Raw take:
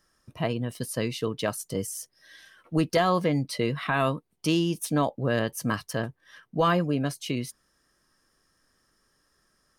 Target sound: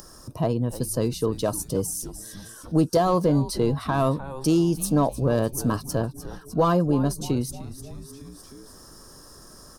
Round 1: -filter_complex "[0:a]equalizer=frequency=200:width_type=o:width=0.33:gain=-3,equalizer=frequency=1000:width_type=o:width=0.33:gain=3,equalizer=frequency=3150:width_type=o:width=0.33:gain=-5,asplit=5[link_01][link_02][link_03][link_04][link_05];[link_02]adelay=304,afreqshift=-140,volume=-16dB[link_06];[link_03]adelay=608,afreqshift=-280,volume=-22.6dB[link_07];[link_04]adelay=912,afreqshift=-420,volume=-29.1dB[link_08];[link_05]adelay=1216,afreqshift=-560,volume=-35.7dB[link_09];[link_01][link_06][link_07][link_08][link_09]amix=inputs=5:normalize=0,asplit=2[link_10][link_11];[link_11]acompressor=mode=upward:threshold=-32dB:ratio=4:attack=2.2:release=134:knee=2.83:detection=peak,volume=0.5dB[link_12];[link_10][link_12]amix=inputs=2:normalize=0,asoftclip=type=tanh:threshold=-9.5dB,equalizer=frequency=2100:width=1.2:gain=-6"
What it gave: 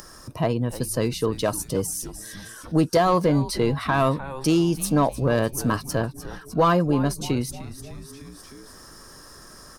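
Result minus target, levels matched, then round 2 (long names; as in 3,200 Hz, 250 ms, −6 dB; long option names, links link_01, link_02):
2,000 Hz band +6.5 dB
-filter_complex "[0:a]equalizer=frequency=200:width_type=o:width=0.33:gain=-3,equalizer=frequency=1000:width_type=o:width=0.33:gain=3,equalizer=frequency=3150:width_type=o:width=0.33:gain=-5,asplit=5[link_01][link_02][link_03][link_04][link_05];[link_02]adelay=304,afreqshift=-140,volume=-16dB[link_06];[link_03]adelay=608,afreqshift=-280,volume=-22.6dB[link_07];[link_04]adelay=912,afreqshift=-420,volume=-29.1dB[link_08];[link_05]adelay=1216,afreqshift=-560,volume=-35.7dB[link_09];[link_01][link_06][link_07][link_08][link_09]amix=inputs=5:normalize=0,asplit=2[link_10][link_11];[link_11]acompressor=mode=upward:threshold=-32dB:ratio=4:attack=2.2:release=134:knee=2.83:detection=peak,volume=0.5dB[link_12];[link_10][link_12]amix=inputs=2:normalize=0,asoftclip=type=tanh:threshold=-9.5dB,equalizer=frequency=2100:width=1.2:gain=-17.5"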